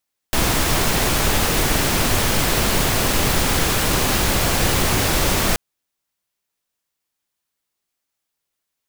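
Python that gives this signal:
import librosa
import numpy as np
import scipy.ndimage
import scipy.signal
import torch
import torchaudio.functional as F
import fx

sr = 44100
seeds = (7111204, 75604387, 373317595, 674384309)

y = fx.noise_colour(sr, seeds[0], length_s=5.23, colour='pink', level_db=-18.0)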